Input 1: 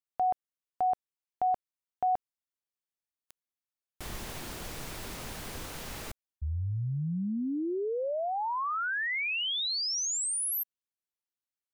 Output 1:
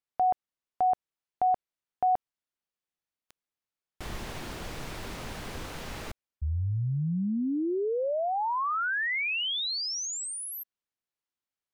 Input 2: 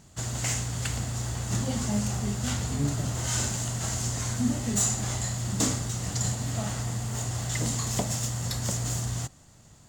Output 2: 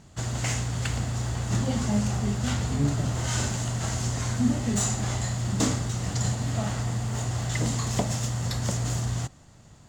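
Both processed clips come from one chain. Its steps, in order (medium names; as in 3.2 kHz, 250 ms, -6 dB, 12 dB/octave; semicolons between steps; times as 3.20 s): treble shelf 7 kHz -12 dB; trim +3 dB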